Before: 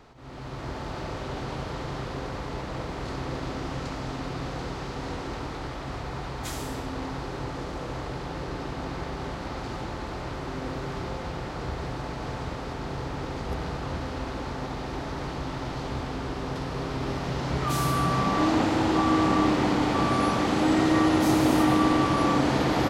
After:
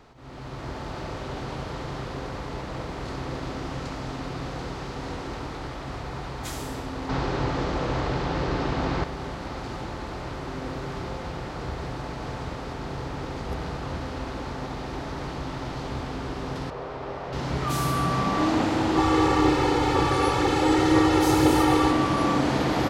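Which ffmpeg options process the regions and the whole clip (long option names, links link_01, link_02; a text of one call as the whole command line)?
ffmpeg -i in.wav -filter_complex "[0:a]asettb=1/sr,asplit=3[link_01][link_02][link_03];[link_01]atrim=end=7.094[link_04];[link_02]atrim=start=7.09:end=9.04,asetpts=PTS-STARTPTS,afade=type=in:duration=0.004:curve=qsin,afade=type=out:start_time=1.946:duration=0.004:curve=qsin,lowpass=6100,acontrast=85[link_05];[link_03]atrim=start=9.036[link_06];[link_04][link_05]acrossfade=duration=0.004:curve1=hsin:curve2=qsin[link_07];[link_07][link_06]acrossfade=duration=0.004:curve1=qsin:curve2=hsin,asettb=1/sr,asplit=3[link_08][link_09][link_10];[link_08]atrim=end=16.704[link_11];[link_09]atrim=start=16.7:end=17.33,asetpts=PTS-STARTPTS,afade=type=in:duration=0.004:curve=qsin,afade=type=out:start_time=0.626:duration=0.004:curve=qsin,lowpass=frequency=1400:poles=1,lowshelf=frequency=360:width_type=q:width=1.5:gain=-8.5[link_12];[link_10]atrim=start=17.326[link_13];[link_11][link_12]acrossfade=duration=0.004:curve1=hsin:curve2=qsin[link_14];[link_14][link_13]acrossfade=duration=0.004:curve1=qsin:curve2=hsin,asettb=1/sr,asplit=3[link_15][link_16][link_17];[link_15]atrim=end=18.974[link_18];[link_16]atrim=start=18.97:end=21.91,asetpts=PTS-STARTPTS,afade=type=in:duration=0.004:curve=qsin,afade=type=out:start_time=2.936:duration=0.004:curve=qsin,aecho=1:1:2.3:0.9,atrim=end_sample=129654,aphaser=in_gain=1:out_gain=1:delay=2.7:decay=0.22:speed=2:type=triangular[link_19];[link_17]atrim=start=21.906[link_20];[link_18][link_19]acrossfade=duration=0.004:curve1=hsin:curve2=qsin[link_21];[link_21][link_20]acrossfade=duration=0.004:curve1=qsin:curve2=hsin" out.wav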